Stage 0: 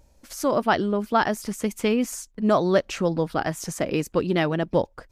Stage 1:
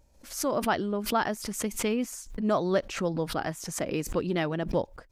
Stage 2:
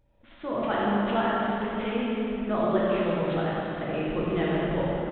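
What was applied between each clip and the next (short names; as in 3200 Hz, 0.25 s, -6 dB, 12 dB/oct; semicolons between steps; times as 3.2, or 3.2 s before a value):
backwards sustainer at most 110 dB/s; gain -6 dB
downsampling 8000 Hz; echo 93 ms -6.5 dB; plate-style reverb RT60 3.4 s, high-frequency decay 0.75×, DRR -6.5 dB; gain -6 dB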